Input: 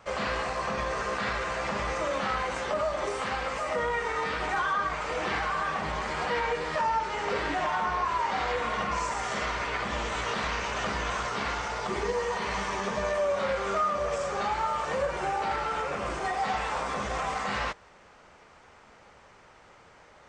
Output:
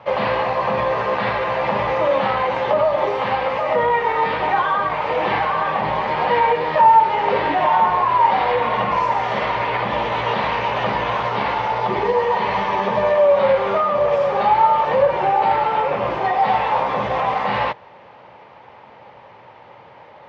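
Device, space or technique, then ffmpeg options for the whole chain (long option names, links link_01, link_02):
guitar cabinet: -af "highpass=110,equalizer=frequency=120:width_type=q:width=4:gain=9,equalizer=frequency=550:width_type=q:width=4:gain=6,equalizer=frequency=890:width_type=q:width=4:gain=9,equalizer=frequency=1400:width_type=q:width=4:gain=-6,lowpass=frequency=3700:width=0.5412,lowpass=frequency=3700:width=1.3066,volume=8dB"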